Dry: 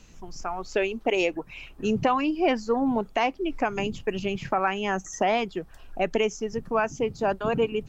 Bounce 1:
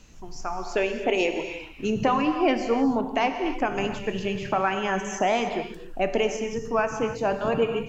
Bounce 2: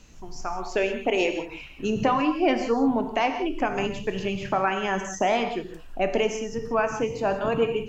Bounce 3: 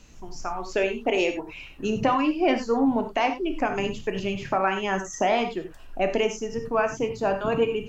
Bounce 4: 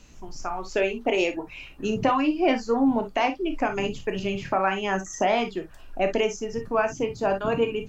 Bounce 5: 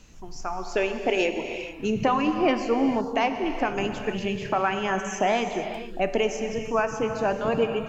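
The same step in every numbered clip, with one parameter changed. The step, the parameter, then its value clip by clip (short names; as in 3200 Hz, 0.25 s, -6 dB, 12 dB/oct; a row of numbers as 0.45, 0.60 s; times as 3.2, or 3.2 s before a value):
non-linear reverb, gate: 330, 210, 120, 80, 490 ms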